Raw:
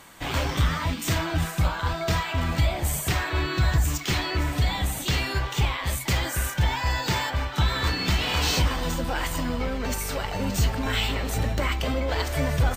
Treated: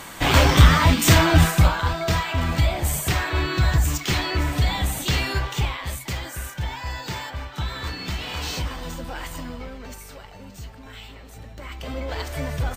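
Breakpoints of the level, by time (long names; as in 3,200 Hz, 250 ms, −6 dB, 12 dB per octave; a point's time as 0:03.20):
0:01.42 +10.5 dB
0:01.93 +2.5 dB
0:05.32 +2.5 dB
0:06.20 −5.5 dB
0:09.37 −5.5 dB
0:10.53 −15.5 dB
0:11.50 −15.5 dB
0:11.99 −3.5 dB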